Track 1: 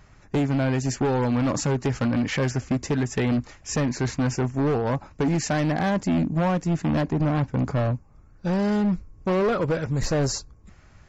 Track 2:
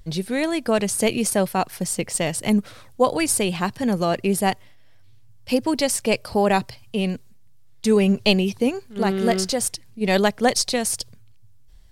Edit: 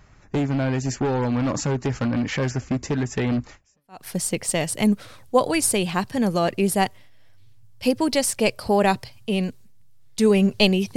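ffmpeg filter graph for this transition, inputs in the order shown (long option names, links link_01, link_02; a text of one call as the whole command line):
ffmpeg -i cue0.wav -i cue1.wav -filter_complex "[0:a]apad=whole_dur=10.96,atrim=end=10.96,atrim=end=4.05,asetpts=PTS-STARTPTS[link_01];[1:a]atrim=start=1.21:end=8.62,asetpts=PTS-STARTPTS[link_02];[link_01][link_02]acrossfade=duration=0.5:curve1=exp:curve2=exp" out.wav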